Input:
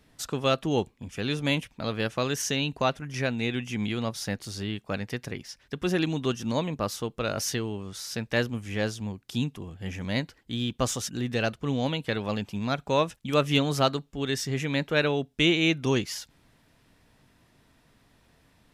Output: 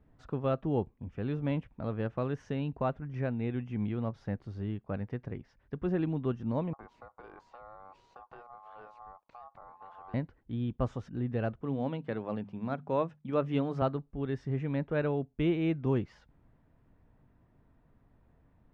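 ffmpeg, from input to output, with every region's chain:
-filter_complex "[0:a]asettb=1/sr,asplit=3[s0][s1][s2];[s0]atrim=end=6.734[s3];[s1]atrim=start=6.73:end=10.14,asetpts=PTS-STARTPTS,afade=t=in:d=0.004:c=qsin,afade=t=out:st=3.406:d=0.004:c=qsin,aeval=exprs='if(lt(val(0),0),0.708*val(0),val(0))':c=same,acompressor=threshold=0.0158:ratio=8:attack=3.2:release=140:knee=1:detection=peak,aeval=exprs='val(0)*sin(2*PI*960*n/s)':c=same[s4];[s2]atrim=start=10.136[s5];[s3][s4]acrossfade=d=0.004:c1=hsin:c2=qsin[s6];[s6][s5]acrossfade=d=0.004:c1=qsin:c2=hsin,asettb=1/sr,asplit=3[s7][s8][s9];[s7]atrim=end=11.614[s10];[s8]atrim=start=11.61:end=13.82,asetpts=PTS-STARTPTS,afade=t=in:d=0.004:c=qsin,afade=t=out:st=2.206:d=0.004:c=qsin,highpass=150,highshelf=f=5000:g=4.5,bandreject=f=50:t=h:w=6,bandreject=f=100:t=h:w=6,bandreject=f=150:t=h:w=6,bandreject=f=200:t=h:w=6,bandreject=f=250:t=h:w=6[s11];[s9]atrim=start=13.816[s12];[s10][s11]acrossfade=d=0.004:c1=hsin:c2=qsin[s13];[s13][s12]acrossfade=d=0.004:c1=qsin:c2=hsin,lowpass=1200,lowshelf=f=120:g=8.5,volume=0.531"

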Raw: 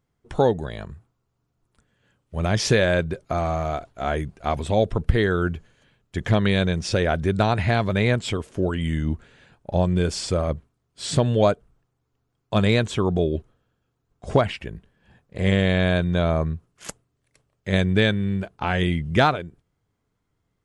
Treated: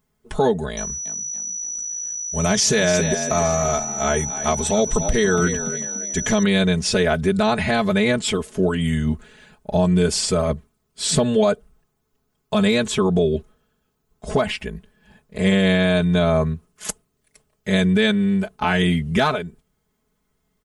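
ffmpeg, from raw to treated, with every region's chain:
-filter_complex "[0:a]asettb=1/sr,asplit=3[s0][s1][s2];[s0]atrim=end=0.774[s3];[s1]atrim=start=0.77:end=6.43,asetpts=PTS-STARTPTS,afade=t=in:d=0.004:c=qsin,afade=t=out:st=5.656:d=0.004:c=qsin,equalizer=f=6600:w=1.9:g=9,aeval=exprs='val(0)+0.0224*sin(2*PI*5900*n/s)':c=same,asplit=5[s4][s5][s6][s7][s8];[s5]adelay=284,afreqshift=57,volume=0.237[s9];[s6]adelay=568,afreqshift=114,volume=0.0923[s10];[s7]adelay=852,afreqshift=171,volume=0.0359[s11];[s8]adelay=1136,afreqshift=228,volume=0.0141[s12];[s4][s9][s10][s11][s12]amix=inputs=5:normalize=0,atrim=end_sample=249606[s13];[s2]atrim=start=6.426[s14];[s3][s13]acrossfade=d=0.004:c1=hsin:c2=qsin[s15];[s15][s14]acrossfade=d=0.004:c1=qsin:c2=hsin,highshelf=f=8200:g=12,aecho=1:1:4.7:0.97,alimiter=level_in=2.99:limit=0.891:release=50:level=0:latency=1,volume=0.398"

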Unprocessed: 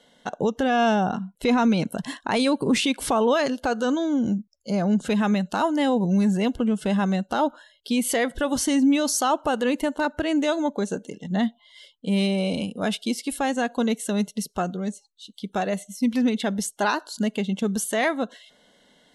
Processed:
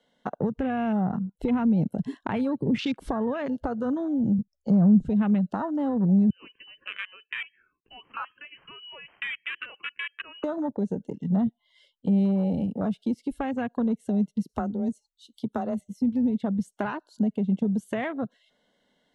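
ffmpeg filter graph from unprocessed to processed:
-filter_complex "[0:a]asettb=1/sr,asplit=3[s0][s1][s2];[s0]atrim=end=4.384[s3];[s1]atrim=start=4.38:end=5.09,asetpts=PTS-STARTPTS,afade=t=in:d=0.004:c=qsin,afade=t=out:st=0.706:d=0.004:c=qsin,lowshelf=f=180:g=11.5,acrusher=bits=8:mode=log:mix=0:aa=0.000001[s4];[s2]atrim=start=5.086[s5];[s3][s4]acrossfade=d=0.004:c1=hsin:c2=qsin[s6];[s6][s5]acrossfade=d=0.004:c1=qsin:c2=hsin,asettb=1/sr,asplit=3[s7][s8][s9];[s7]atrim=end=6.304[s10];[s8]atrim=start=6.3:end=10.44,asetpts=PTS-STARTPTS,afade=t=in:d=0.004:c=qsin,afade=t=out:st=4.136:d=0.004:c=qsin,highpass=f=1500:p=1,asoftclip=type=hard:threshold=0.0531,lowpass=f=2700:t=q:w=0.5098,lowpass=f=2700:t=q:w=0.6013,lowpass=f=2700:t=q:w=0.9,lowpass=f=2700:t=q:w=2.563,afreqshift=-3200[s11];[s9]atrim=start=10.436[s12];[s10][s11]acrossfade=d=0.004:c1=hsin:c2=qsin[s13];[s13][s12]acrossfade=d=0.004:c1=qsin:c2=hsin,asettb=1/sr,asplit=3[s14][s15][s16];[s14]atrim=end=14.494[s17];[s15]atrim=start=14.49:end=15.81,asetpts=PTS-STARTPTS,afade=t=in:d=0.004:c=qsin,afade=t=out:st=1.316:d=0.004:c=qsin,aemphasis=mode=production:type=50kf,afreqshift=22[s18];[s16]atrim=start=15.806[s19];[s17][s18]acrossfade=d=0.004:c1=hsin:c2=qsin[s20];[s20][s19]acrossfade=d=0.004:c1=qsin:c2=hsin,afwtdn=0.0355,highshelf=f=5900:g=-10,acrossover=split=180[s21][s22];[s22]acompressor=threshold=0.0158:ratio=5[s23];[s21][s23]amix=inputs=2:normalize=0,volume=2"

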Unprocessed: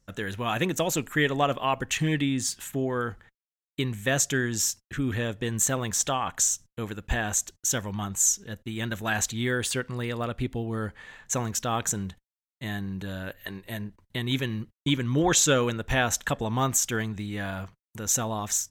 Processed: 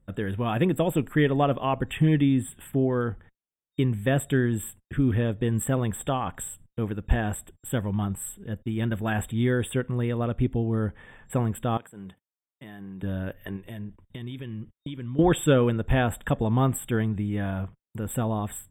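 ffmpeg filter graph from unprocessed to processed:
-filter_complex "[0:a]asettb=1/sr,asplit=3[s0][s1][s2];[s0]atrim=end=11.774[s3];[s1]atrim=start=11.77:end=13.03,asetpts=PTS-STARTPTS,afade=t=in:d=0.004:c=qsin,afade=t=out:st=1.256:d=0.004:c=qsin,highpass=120,lowshelf=f=250:g=-12,acompressor=threshold=0.01:ratio=5:attack=3.2:release=140:knee=1:detection=peak[s4];[s2]atrim=start=13.026[s5];[s3][s4]acrossfade=d=0.004:c1=hsin:c2=qsin[s6];[s6][s5]acrossfade=d=0.004:c1=qsin:c2=hsin,asettb=1/sr,asplit=3[s7][s8][s9];[s7]atrim=end=13.564[s10];[s8]atrim=start=13.56:end=15.19,asetpts=PTS-STARTPTS,afade=t=in:d=0.004:c=qsin,afade=t=out:st=1.626:d=0.004:c=qsin,equalizer=f=4300:t=o:w=1.8:g=6.5,acompressor=threshold=0.0126:ratio=4:attack=3.2:release=140:knee=1:detection=peak[s11];[s9]atrim=start=15.186[s12];[s10][s11]acrossfade=d=0.004:c1=hsin:c2=qsin[s13];[s13][s12]acrossfade=d=0.004:c1=qsin:c2=hsin,afftfilt=real='re*(1-between(b*sr/4096,3700,7500))':imag='im*(1-between(b*sr/4096,3700,7500))':win_size=4096:overlap=0.75,tiltshelf=f=790:g=6.5"

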